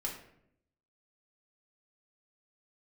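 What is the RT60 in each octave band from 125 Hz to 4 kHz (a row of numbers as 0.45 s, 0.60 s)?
1.0 s, 1.0 s, 0.80 s, 0.65 s, 0.60 s, 0.45 s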